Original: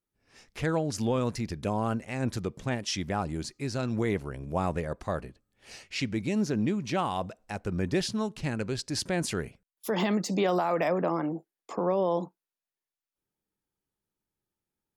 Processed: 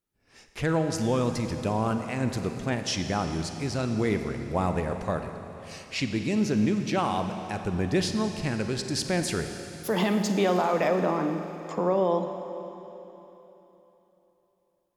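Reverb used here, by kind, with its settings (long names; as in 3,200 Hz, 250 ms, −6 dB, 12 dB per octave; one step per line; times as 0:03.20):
four-comb reverb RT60 3.5 s, DRR 6.5 dB
level +2 dB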